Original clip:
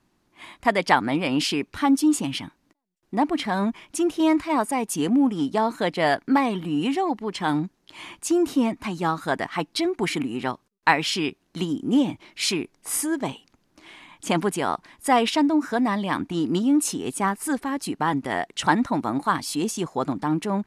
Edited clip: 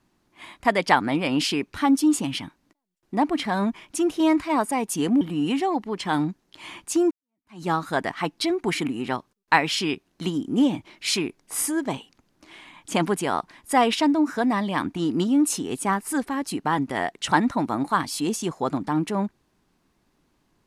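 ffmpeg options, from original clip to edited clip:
-filter_complex "[0:a]asplit=3[a][b][c];[a]atrim=end=5.212[d];[b]atrim=start=6.558:end=8.46,asetpts=PTS-STARTPTS,afade=t=out:st=1.898:d=0.004:c=hsin[e];[c]atrim=start=8.46,asetpts=PTS-STARTPTS,afade=t=in:d=0.52:c=exp[f];[e][f]concat=n=2:v=0:a=1[g];[d][g]acrossfade=d=0.004:c1=hsin:c2=hsin"

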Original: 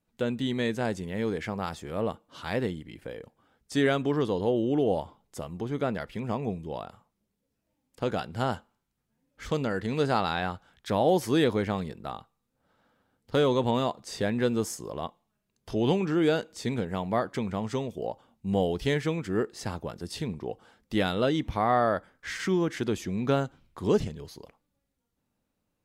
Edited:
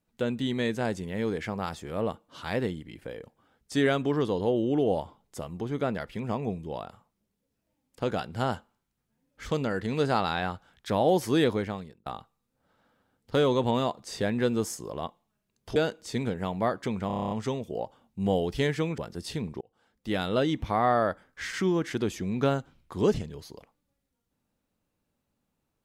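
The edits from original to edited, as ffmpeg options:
-filter_complex "[0:a]asplit=13[a][b][c][d][e][f][g][h][i][j][k][l][m];[a]atrim=end=12.06,asetpts=PTS-STARTPTS,afade=t=out:st=11.48:d=0.58[n];[b]atrim=start=12.06:end=15.762,asetpts=PTS-STARTPTS,afade=t=in:d=0.004:c=hsin[o];[c]atrim=start=16.268:end=17.612[p];[d]atrim=start=17.578:end=17.612[q];[e]atrim=start=17.578:end=17.612[r];[f]atrim=start=17.578:end=17.612[s];[g]atrim=start=17.578:end=17.612[t];[h]atrim=start=17.578:end=17.612[u];[i]atrim=start=17.578:end=17.612[v];[j]atrim=start=17.578:end=17.612[w];[k]atrim=start=17.578:end=19.252[x];[l]atrim=start=19.838:end=20.47,asetpts=PTS-STARTPTS,afade=t=out:st=0.628:d=0.004:c=hsin[y];[m]atrim=start=20.47,asetpts=PTS-STARTPTS,afade=t=in:d=0.76[z];[n][o]concat=n=2:v=0:a=1[aa];[aa][p]acrossfade=d=0.004:c1=hsin:c2=hsin[ab];[ab][q]acrossfade=d=0.004:c1=hsin:c2=hsin[ac];[ac][r]acrossfade=d=0.004:c1=hsin:c2=hsin[ad];[ad][s]acrossfade=d=0.004:c1=hsin:c2=hsin[ae];[ae][t]acrossfade=d=0.004:c1=hsin:c2=hsin[af];[af][u]acrossfade=d=0.004:c1=hsin:c2=hsin[ag];[ag][v]acrossfade=d=0.004:c1=hsin:c2=hsin[ah];[ah][w]acrossfade=d=0.004:c1=hsin:c2=hsin[ai];[ai][x]acrossfade=d=0.004:c1=hsin:c2=hsin[aj];[y][z]concat=n=2:v=0:a=1[ak];[aj][ak]acrossfade=d=0.004:c1=hsin:c2=hsin"

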